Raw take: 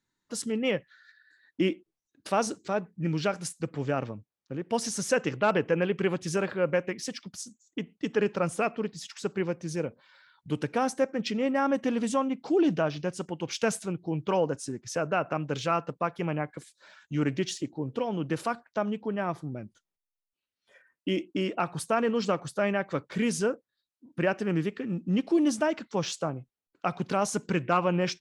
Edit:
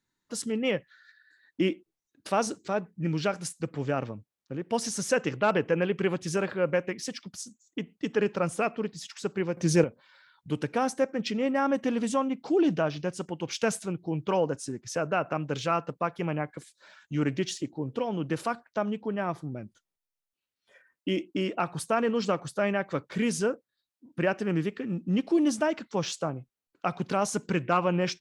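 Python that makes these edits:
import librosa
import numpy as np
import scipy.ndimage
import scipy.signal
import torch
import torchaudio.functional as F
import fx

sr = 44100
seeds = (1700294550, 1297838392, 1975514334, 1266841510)

y = fx.edit(x, sr, fx.clip_gain(start_s=9.57, length_s=0.27, db=10.0), tone=tone)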